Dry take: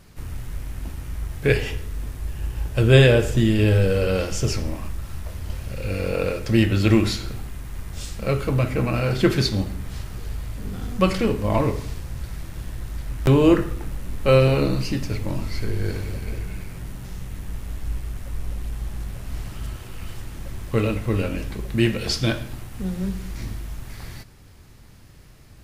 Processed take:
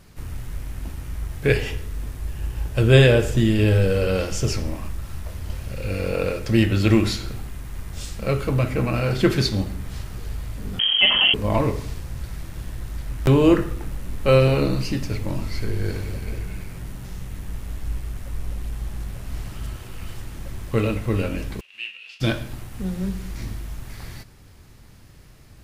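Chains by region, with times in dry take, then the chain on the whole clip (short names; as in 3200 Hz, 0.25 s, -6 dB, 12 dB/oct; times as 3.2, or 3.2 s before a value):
10.79–11.34 inverted band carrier 3200 Hz + fast leveller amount 50%
21.59–22.2 spectral whitening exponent 0.6 + band-pass 2700 Hz, Q 15
whole clip: dry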